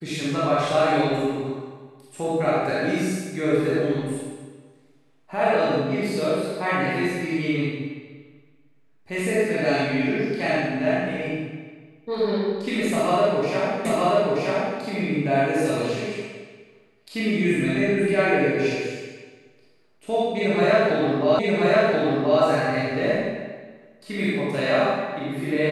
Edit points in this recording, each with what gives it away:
13.85 s: repeat of the last 0.93 s
21.39 s: repeat of the last 1.03 s

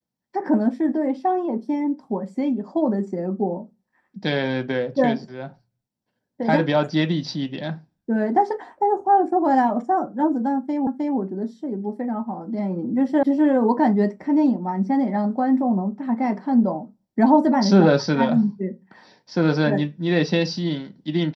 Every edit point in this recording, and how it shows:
10.87 s: repeat of the last 0.31 s
13.23 s: sound stops dead

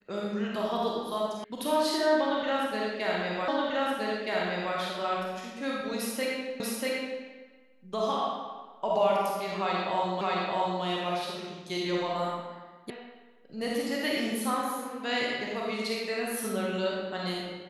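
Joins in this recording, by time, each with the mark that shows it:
1.44 s: sound stops dead
3.48 s: repeat of the last 1.27 s
6.60 s: repeat of the last 0.64 s
10.21 s: repeat of the last 0.62 s
12.90 s: sound stops dead

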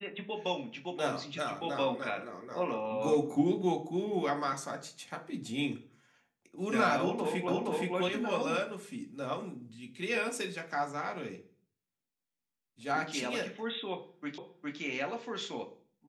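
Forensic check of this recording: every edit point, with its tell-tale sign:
7.48 s: repeat of the last 0.47 s
14.38 s: repeat of the last 0.41 s

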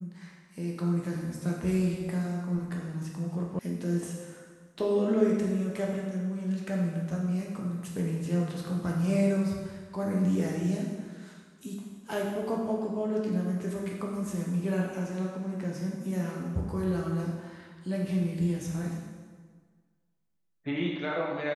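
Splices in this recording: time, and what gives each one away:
3.59 s: sound stops dead

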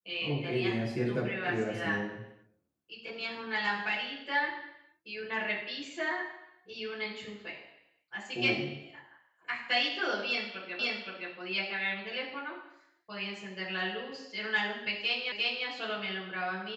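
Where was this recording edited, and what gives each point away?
10.79 s: repeat of the last 0.52 s
15.32 s: repeat of the last 0.35 s

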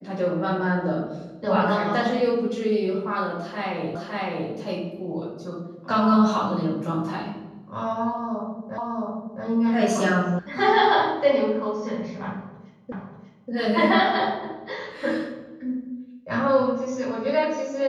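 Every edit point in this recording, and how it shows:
3.95 s: repeat of the last 0.56 s
8.78 s: repeat of the last 0.67 s
10.39 s: sound stops dead
12.92 s: repeat of the last 0.59 s

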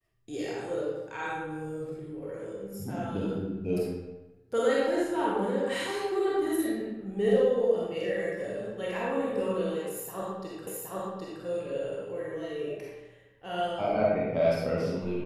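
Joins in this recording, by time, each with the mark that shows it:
10.67 s: repeat of the last 0.77 s

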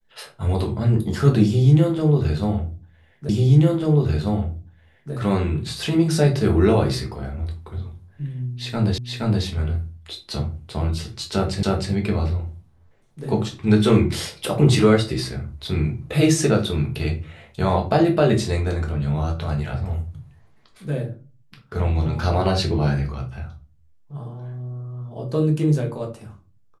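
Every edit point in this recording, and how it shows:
3.29 s: repeat of the last 1.84 s
8.98 s: repeat of the last 0.47 s
11.63 s: repeat of the last 0.31 s

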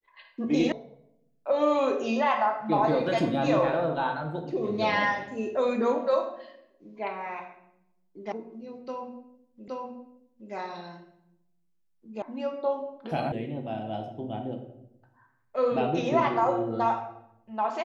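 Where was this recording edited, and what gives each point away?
0.72 s: sound stops dead
8.32 s: sound stops dead
9.68 s: repeat of the last 0.82 s
12.22 s: sound stops dead
13.32 s: sound stops dead

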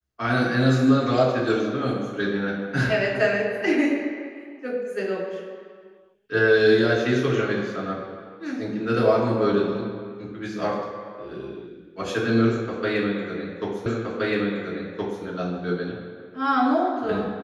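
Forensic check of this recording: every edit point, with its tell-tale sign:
13.86 s: repeat of the last 1.37 s

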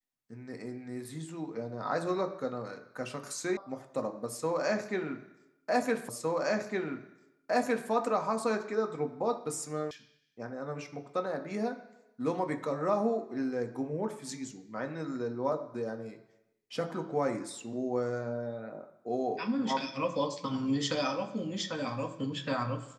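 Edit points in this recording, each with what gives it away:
3.57 s: sound stops dead
6.09 s: repeat of the last 1.81 s
9.91 s: sound stops dead

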